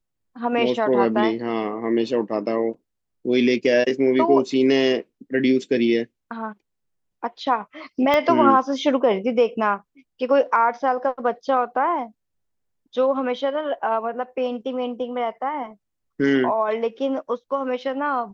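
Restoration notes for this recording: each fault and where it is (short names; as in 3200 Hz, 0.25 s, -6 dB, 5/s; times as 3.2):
8.14 pop -8 dBFS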